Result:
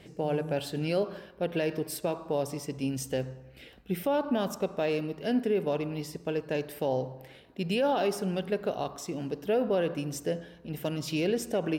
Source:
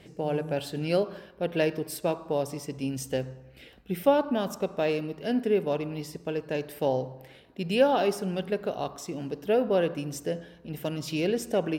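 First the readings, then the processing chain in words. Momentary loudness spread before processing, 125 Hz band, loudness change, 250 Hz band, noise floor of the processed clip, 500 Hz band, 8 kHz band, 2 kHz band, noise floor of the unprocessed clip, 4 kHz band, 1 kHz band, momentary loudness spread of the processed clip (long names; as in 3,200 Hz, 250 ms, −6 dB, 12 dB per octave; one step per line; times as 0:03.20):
12 LU, −0.5 dB, −2.0 dB, −1.0 dB, −53 dBFS, −2.5 dB, 0.0 dB, −2.0 dB, −53 dBFS, −1.5 dB, −2.5 dB, 9 LU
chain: brickwall limiter −19 dBFS, peak gain reduction 9 dB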